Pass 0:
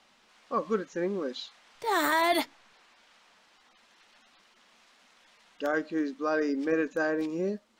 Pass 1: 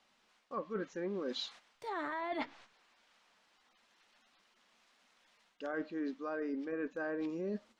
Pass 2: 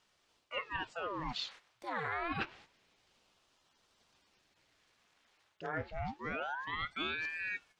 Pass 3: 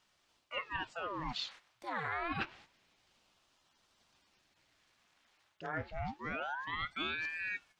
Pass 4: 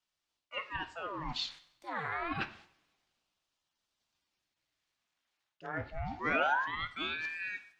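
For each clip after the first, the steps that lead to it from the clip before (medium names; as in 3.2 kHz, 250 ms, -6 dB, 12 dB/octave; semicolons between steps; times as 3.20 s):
gate -54 dBFS, range -10 dB; low-pass that closes with the level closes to 2.1 kHz, closed at -23 dBFS; reverse; compression 12:1, threshold -36 dBFS, peak gain reduction 15 dB; reverse; trim +1 dB
dynamic bell 2 kHz, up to +7 dB, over -54 dBFS, Q 0.83; ring modulator with a swept carrier 1.1 kHz, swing 90%, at 0.27 Hz; trim +1 dB
peaking EQ 450 Hz -5 dB 0.4 oct
two-slope reverb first 0.65 s, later 2.6 s, from -25 dB, DRR 11 dB; time-frequency box 6.11–6.67 s, 240–7200 Hz +7 dB; three bands expanded up and down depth 40%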